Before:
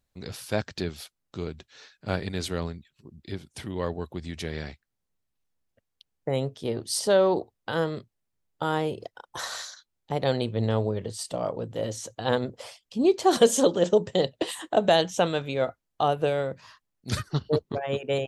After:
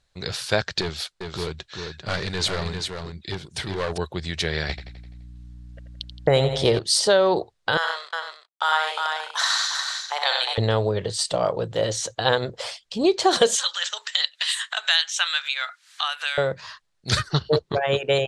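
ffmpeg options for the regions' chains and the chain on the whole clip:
ffmpeg -i in.wav -filter_complex "[0:a]asettb=1/sr,asplit=3[link_01][link_02][link_03];[link_01]atrim=end=0.814[link_04];[link_02]atrim=start=0.81:end=3.98,asetpts=PTS-STARTPTS,afade=type=in:duration=0.004:curve=qsin,afade=type=out:start_time=3.166:duration=0.004:curve=qsin,asoftclip=type=hard:threshold=-29.5dB,aecho=1:1:395:0.531,atrim=end_sample=139797[link_05];[link_03]atrim=start=3.976[link_06];[link_04][link_05]acrossfade=duration=0.004:curve1=hsin:curve2=qsin[link_07];[link_07][link_06]acrossfade=duration=0.004:curve1=qsin:curve2=hsin,asettb=1/sr,asplit=3[link_08][link_09][link_10];[link_08]atrim=end=4.694[link_11];[link_09]atrim=start=4.69:end=6.79,asetpts=PTS-STARTPTS,afade=type=in:duration=0.004:curve=qsin,afade=type=out:start_time=2.096:duration=0.004:curve=qsin,aecho=1:1:85|170|255|340|425|510:0.282|0.149|0.0792|0.042|0.0222|0.0118,atrim=end_sample=92610,acontrast=88,aeval=exprs='val(0)+0.00447*(sin(2*PI*60*n/s)+sin(2*PI*2*60*n/s)/2+sin(2*PI*3*60*n/s)/3+sin(2*PI*4*60*n/s)/4+sin(2*PI*5*60*n/s)/5)':channel_layout=same[link_12];[link_10]atrim=start=6.786[link_13];[link_11][link_12]acrossfade=duration=0.004:curve1=hsin:curve2=qsin[link_14];[link_14][link_13]acrossfade=duration=0.004:curve1=qsin:curve2=hsin,asettb=1/sr,asplit=3[link_15][link_16][link_17];[link_15]atrim=end=7.774[link_18];[link_16]atrim=start=7.77:end=10.58,asetpts=PTS-STARTPTS,afade=type=in:duration=0.004:curve=qsin,afade=type=out:start_time=2.806:duration=0.004:curve=qsin,aeval=exprs='sgn(val(0))*max(abs(val(0))-0.00224,0)':channel_layout=same,highpass=frequency=840:width=0.5412,highpass=frequency=840:width=1.3066,aecho=1:1:64|101|356|446:0.562|0.501|0.562|0.2,atrim=end_sample=123921[link_19];[link_17]atrim=start=10.576[link_20];[link_18][link_19]acrossfade=duration=0.004:curve1=hsin:curve2=qsin[link_21];[link_21][link_20]acrossfade=duration=0.004:curve1=qsin:curve2=hsin,asettb=1/sr,asplit=3[link_22][link_23][link_24];[link_22]atrim=end=13.554[link_25];[link_23]atrim=start=13.55:end=16.38,asetpts=PTS-STARTPTS,afade=type=in:duration=0.004:curve=qsin,afade=type=out:start_time=2.826:duration=0.004:curve=qsin,highpass=frequency=1400:width=0.5412,highpass=frequency=1400:width=1.3066,acompressor=mode=upward:threshold=-34dB:ratio=2.5:attack=3.2:release=140:knee=2.83:detection=peak[link_26];[link_24]atrim=start=16.376[link_27];[link_25][link_26]acrossfade=duration=0.004:curve1=hsin:curve2=qsin[link_28];[link_28][link_27]acrossfade=duration=0.004:curve1=qsin:curve2=hsin,equalizer=frequency=100:width_type=o:width=0.67:gain=-3,equalizer=frequency=250:width_type=o:width=0.67:gain=-11,equalizer=frequency=1600:width_type=o:width=0.67:gain=4,equalizer=frequency=4000:width_type=o:width=0.67:gain=6,acompressor=threshold=-25dB:ratio=2.5,lowpass=frequency=9500:width=0.5412,lowpass=frequency=9500:width=1.3066,volume=8.5dB" out.wav

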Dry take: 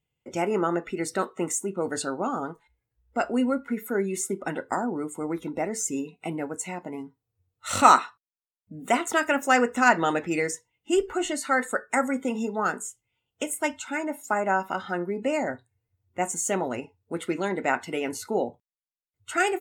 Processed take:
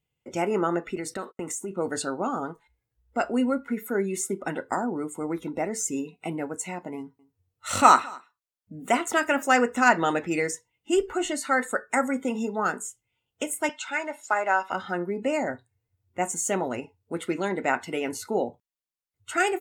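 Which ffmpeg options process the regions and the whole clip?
ffmpeg -i in.wav -filter_complex "[0:a]asettb=1/sr,asplit=3[link_01][link_02][link_03];[link_01]atrim=end=0.964[link_04];[link_02]atrim=start=0.96:end=1.71,asetpts=PTS-STARTPTS,afade=type=in:duration=0.004:curve=qsin,afade=type=out:start_time=0.746:duration=0.004:curve=qsin,agate=range=-41dB:threshold=-45dB:ratio=16:release=100:detection=peak,acompressor=threshold=-29dB:ratio=4:attack=3.2:release=140:knee=1:detection=peak[link_05];[link_03]atrim=start=1.706[link_06];[link_04][link_05]acrossfade=duration=0.004:curve1=hsin:curve2=qsin[link_07];[link_07][link_06]acrossfade=duration=0.004:curve1=qsin:curve2=hsin,asettb=1/sr,asplit=3[link_08][link_09][link_10];[link_08]atrim=end=6.974[link_11];[link_09]atrim=start=6.97:end=9.43,asetpts=PTS-STARTPTS,afade=type=in:duration=0.004:curve=qsin,afade=type=out:start_time=2.456:duration=0.004:curve=qsin,bandreject=frequency=3700:width=22,aecho=1:1:220:0.0631,atrim=end_sample=108486[link_12];[link_10]atrim=start=9.426[link_13];[link_11][link_12]acrossfade=duration=0.004:curve1=hsin:curve2=qsin[link_14];[link_14][link_13]acrossfade=duration=0.004:curve1=qsin:curve2=hsin,asettb=1/sr,asplit=3[link_15][link_16][link_17];[link_15]atrim=end=13.694[link_18];[link_16]atrim=start=13.69:end=14.72,asetpts=PTS-STARTPTS,afade=type=in:duration=0.004:curve=qsin,afade=type=out:start_time=1.026:duration=0.004:curve=qsin,highshelf=frequency=2000:gain=8,acrusher=bits=8:mode=log:mix=0:aa=0.000001,highpass=490,lowpass=4800[link_19];[link_17]atrim=start=14.716[link_20];[link_18][link_19]acrossfade=duration=0.004:curve1=hsin:curve2=qsin[link_21];[link_21][link_20]acrossfade=duration=0.004:curve1=qsin:curve2=hsin" out.wav

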